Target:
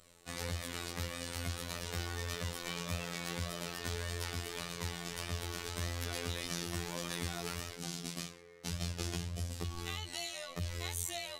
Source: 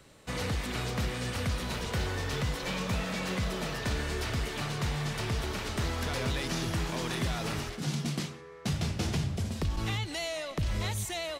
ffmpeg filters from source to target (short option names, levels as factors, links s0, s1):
-af "flanger=delay=1.6:depth=1.2:regen=47:speed=1.7:shape=sinusoidal,aemphasis=mode=production:type=cd,afftfilt=real='hypot(re,im)*cos(PI*b)':imag='0':win_size=2048:overlap=0.75"